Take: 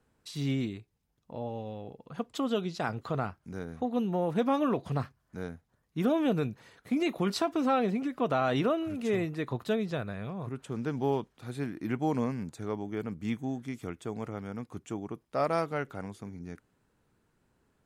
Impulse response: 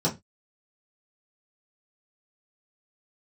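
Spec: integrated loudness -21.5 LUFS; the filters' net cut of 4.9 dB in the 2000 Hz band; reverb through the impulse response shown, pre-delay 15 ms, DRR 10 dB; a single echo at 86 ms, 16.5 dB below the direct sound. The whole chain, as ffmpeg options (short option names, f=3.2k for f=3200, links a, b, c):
-filter_complex "[0:a]equalizer=f=2k:t=o:g=-7,aecho=1:1:86:0.15,asplit=2[a][b];[1:a]atrim=start_sample=2205,adelay=15[c];[b][c]afir=irnorm=-1:irlink=0,volume=-21dB[d];[a][d]amix=inputs=2:normalize=0,volume=9.5dB"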